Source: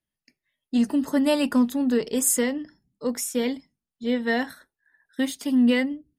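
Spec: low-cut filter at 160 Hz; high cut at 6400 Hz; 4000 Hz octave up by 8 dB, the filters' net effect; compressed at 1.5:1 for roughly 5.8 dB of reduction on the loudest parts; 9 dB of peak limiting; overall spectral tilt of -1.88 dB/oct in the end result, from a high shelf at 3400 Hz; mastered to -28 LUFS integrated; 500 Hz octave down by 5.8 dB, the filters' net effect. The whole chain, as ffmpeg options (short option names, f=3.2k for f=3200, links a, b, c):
-af "highpass=160,lowpass=6.4k,equalizer=f=500:t=o:g=-6.5,highshelf=f=3.4k:g=4.5,equalizer=f=4k:t=o:g=8.5,acompressor=threshold=-34dB:ratio=1.5,volume=5.5dB,alimiter=limit=-18.5dB:level=0:latency=1"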